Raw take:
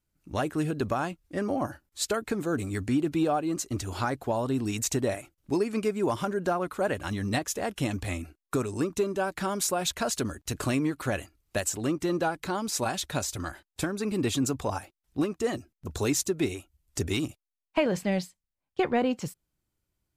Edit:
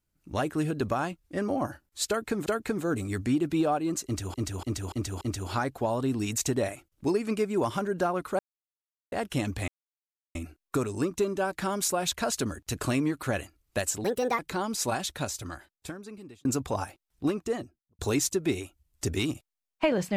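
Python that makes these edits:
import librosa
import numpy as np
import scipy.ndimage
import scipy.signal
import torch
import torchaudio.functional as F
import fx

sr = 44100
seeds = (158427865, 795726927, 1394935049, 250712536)

y = fx.studio_fade_out(x, sr, start_s=15.27, length_s=0.66)
y = fx.edit(y, sr, fx.repeat(start_s=2.08, length_s=0.38, count=2),
    fx.repeat(start_s=3.67, length_s=0.29, count=5),
    fx.silence(start_s=6.85, length_s=0.73),
    fx.insert_silence(at_s=8.14, length_s=0.67),
    fx.speed_span(start_s=11.83, length_s=0.5, speed=1.43),
    fx.fade_out_span(start_s=12.84, length_s=1.55), tone=tone)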